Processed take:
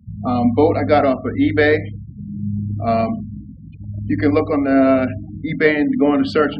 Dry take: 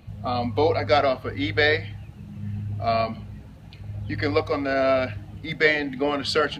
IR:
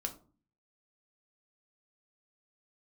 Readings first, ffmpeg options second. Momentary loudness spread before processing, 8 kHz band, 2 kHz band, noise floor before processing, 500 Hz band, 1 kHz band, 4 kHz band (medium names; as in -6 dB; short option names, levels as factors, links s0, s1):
17 LU, no reading, +2.0 dB, -43 dBFS, +6.0 dB, +4.0 dB, -4.0 dB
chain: -filter_complex "[0:a]asplit=2[s0][s1];[1:a]atrim=start_sample=2205,highshelf=f=5600:g=-4[s2];[s1][s2]afir=irnorm=-1:irlink=0,volume=0.75[s3];[s0][s3]amix=inputs=2:normalize=0,afftfilt=real='re*gte(hypot(re,im),0.0282)':imag='im*gte(hypot(re,im),0.0282)':win_size=1024:overlap=0.75,equalizer=f=250:t=o:w=1:g=11,equalizer=f=4000:t=o:w=1:g=-6,equalizer=f=8000:t=o:w=1:g=-10,volume=0.891"